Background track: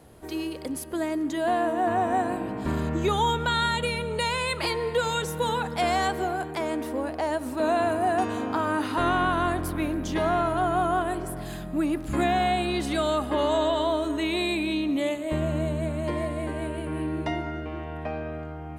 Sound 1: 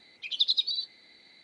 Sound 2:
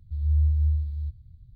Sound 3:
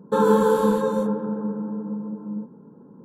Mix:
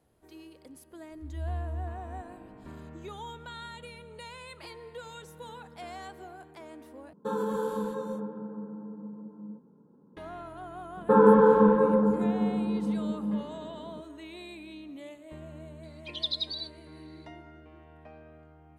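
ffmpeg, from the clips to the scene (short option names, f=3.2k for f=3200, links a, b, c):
-filter_complex "[3:a]asplit=2[a][b];[0:a]volume=-18dB[c];[a]alimiter=limit=-9.5dB:level=0:latency=1:release=73[d];[b]lowpass=f=2.2k:w=0.5412,lowpass=f=2.2k:w=1.3066[e];[c]asplit=2[f][g];[f]atrim=end=7.134[h];[d]atrim=end=3.04,asetpts=PTS-STARTPTS,volume=-12dB[i];[g]atrim=start=10.166[j];[2:a]atrim=end=1.55,asetpts=PTS-STARTPTS,volume=-12.5dB,afade=t=in:d=0.004:c=hsin,afade=t=out:st=1.546:d=0.004:c=hsin,adelay=1110[k];[e]atrim=end=3.04,asetpts=PTS-STARTPTS,afade=t=in:d=0.004:c=hsin,afade=t=out:st=3.036:d=0.004:c=hsin,adelay=10970[l];[1:a]atrim=end=1.43,asetpts=PTS-STARTPTS,volume=-6dB,afade=t=in:d=0.004:c=hsin,afade=t=out:st=1.426:d=0.004:c=hsin,adelay=15830[m];[h][i]acrossfade=d=0.004:c1=hsin:c2=hsin[n];[n][j]acrossfade=d=0.004:c1=hsin:c2=hsin[o];[o][k][l][m]amix=inputs=4:normalize=0"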